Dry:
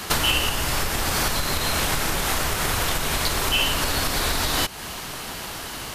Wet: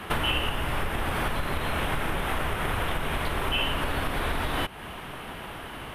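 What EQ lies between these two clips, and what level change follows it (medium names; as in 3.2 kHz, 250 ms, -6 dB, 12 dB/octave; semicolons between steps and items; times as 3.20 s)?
treble shelf 3.8 kHz -7 dB; high-order bell 5.6 kHz -14 dB 1.1 oct; treble shelf 9.3 kHz -10 dB; -2.5 dB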